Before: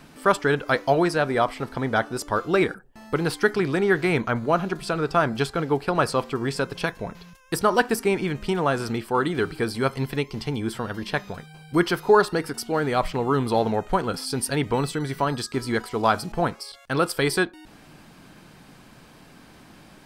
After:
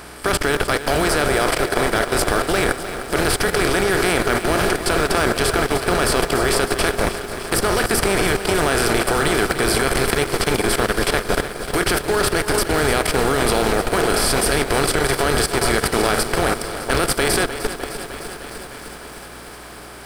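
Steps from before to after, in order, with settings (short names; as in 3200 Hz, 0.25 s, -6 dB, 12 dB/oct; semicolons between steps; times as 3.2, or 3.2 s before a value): per-bin compression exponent 0.4; tilt +2 dB/oct; in parallel at -4.5 dB: Schmitt trigger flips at -10 dBFS; on the sum: dynamic EQ 980 Hz, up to -7 dB, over -30 dBFS, Q 2.1; on a send: band-limited delay 0.409 s, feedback 65%, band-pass 690 Hz, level -7.5 dB; on the sum: hum 60 Hz, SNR 15 dB; level quantiser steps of 20 dB; lo-fi delay 0.304 s, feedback 80%, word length 7-bit, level -12 dB; gain +2 dB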